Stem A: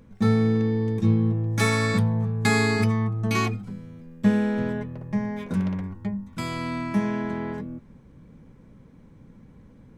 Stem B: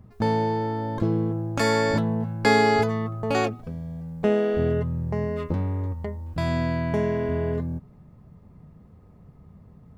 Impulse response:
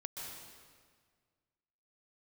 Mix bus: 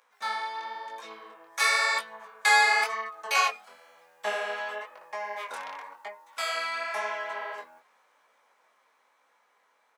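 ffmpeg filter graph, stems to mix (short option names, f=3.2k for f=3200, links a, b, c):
-filter_complex "[0:a]volume=3dB[a];[1:a]adelay=9.5,volume=-2dB[b];[a][b]amix=inputs=2:normalize=0,highpass=f=780:w=0.5412,highpass=f=780:w=1.3066,dynaudnorm=f=540:g=9:m=4dB,flanger=delay=17.5:depth=7.7:speed=0.97"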